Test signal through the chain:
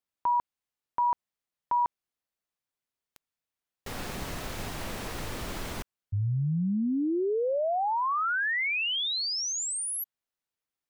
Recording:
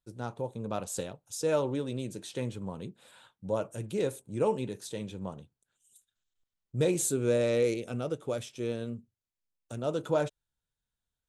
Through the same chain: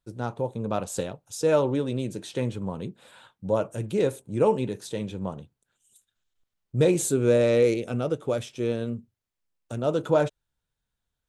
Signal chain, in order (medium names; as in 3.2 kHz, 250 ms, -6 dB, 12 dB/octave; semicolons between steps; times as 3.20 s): treble shelf 4.1 kHz -6 dB; trim +6.5 dB